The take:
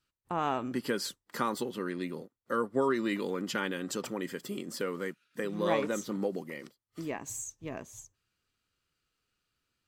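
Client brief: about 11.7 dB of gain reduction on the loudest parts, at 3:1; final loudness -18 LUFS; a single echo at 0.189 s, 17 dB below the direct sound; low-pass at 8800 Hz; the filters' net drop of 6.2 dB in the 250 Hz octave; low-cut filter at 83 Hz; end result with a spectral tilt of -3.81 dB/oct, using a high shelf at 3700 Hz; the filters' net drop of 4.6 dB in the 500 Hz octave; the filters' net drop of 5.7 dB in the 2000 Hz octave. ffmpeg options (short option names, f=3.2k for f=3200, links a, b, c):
-af "highpass=83,lowpass=8.8k,equalizer=f=250:t=o:g=-7,equalizer=f=500:t=o:g=-3,equalizer=f=2k:t=o:g=-6.5,highshelf=f=3.7k:g=-3.5,acompressor=threshold=-44dB:ratio=3,aecho=1:1:189:0.141,volume=29dB"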